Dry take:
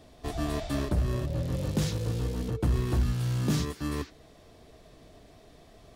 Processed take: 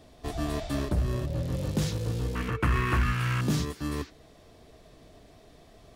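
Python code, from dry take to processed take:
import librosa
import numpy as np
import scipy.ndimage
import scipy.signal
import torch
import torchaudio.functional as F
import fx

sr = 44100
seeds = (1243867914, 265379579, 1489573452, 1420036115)

y = fx.band_shelf(x, sr, hz=1700.0, db=15.5, octaves=1.7, at=(2.35, 3.41))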